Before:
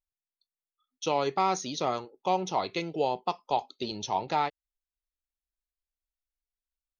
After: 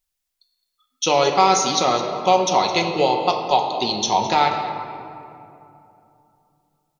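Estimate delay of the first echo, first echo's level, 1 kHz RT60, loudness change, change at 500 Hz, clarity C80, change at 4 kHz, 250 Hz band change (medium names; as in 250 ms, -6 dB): 214 ms, -15.5 dB, 2.7 s, +11.5 dB, +11.0 dB, 6.0 dB, +15.0 dB, +9.5 dB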